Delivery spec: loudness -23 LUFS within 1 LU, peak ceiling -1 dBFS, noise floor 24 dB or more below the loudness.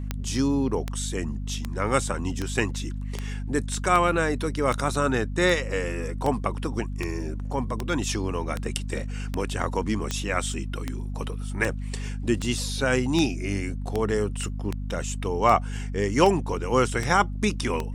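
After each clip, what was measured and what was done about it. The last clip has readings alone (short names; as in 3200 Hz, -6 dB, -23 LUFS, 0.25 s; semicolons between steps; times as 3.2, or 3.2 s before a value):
clicks 24; hum 50 Hz; harmonics up to 250 Hz; hum level -29 dBFS; loudness -26.5 LUFS; peak -4.5 dBFS; loudness target -23.0 LUFS
-> de-click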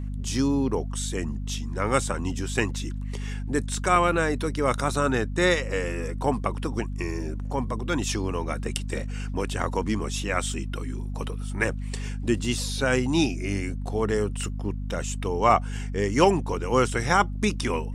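clicks 0; hum 50 Hz; harmonics up to 250 Hz; hum level -29 dBFS
-> notches 50/100/150/200/250 Hz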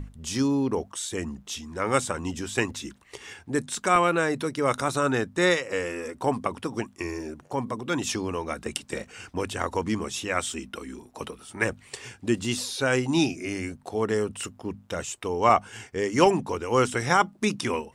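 hum none; loudness -27.0 LUFS; peak -5.5 dBFS; loudness target -23.0 LUFS
-> gain +4 dB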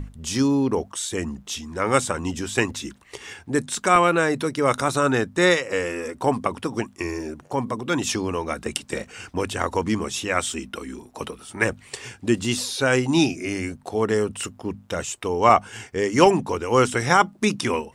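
loudness -23.0 LUFS; peak -1.5 dBFS; noise floor -51 dBFS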